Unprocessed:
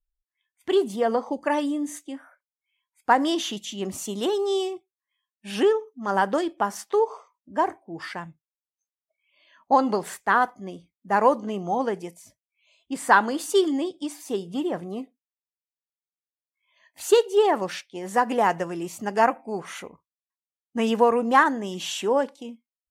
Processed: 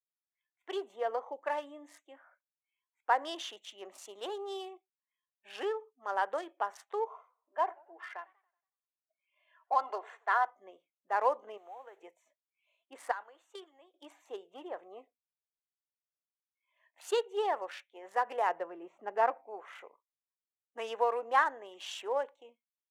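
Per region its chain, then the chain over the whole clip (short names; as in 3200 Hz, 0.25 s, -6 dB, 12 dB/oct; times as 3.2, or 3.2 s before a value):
7.07–10.45 BPF 460–5100 Hz + comb 2.9 ms, depth 52% + warbling echo 93 ms, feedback 43%, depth 163 cents, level -23 dB
11.57–12.03 HPF 490 Hz 6 dB/oct + compressor 2.5:1, threshold -40 dBFS + modulation noise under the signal 15 dB
13.11–13.94 HPF 690 Hz 6 dB/oct + gate -28 dBFS, range -12 dB + compressor, threshold -27 dBFS
18.49–19.46 RIAA curve playback + mismatched tape noise reduction decoder only
whole clip: Wiener smoothing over 9 samples; HPF 480 Hz 24 dB/oct; high shelf 8400 Hz -8 dB; gain -8.5 dB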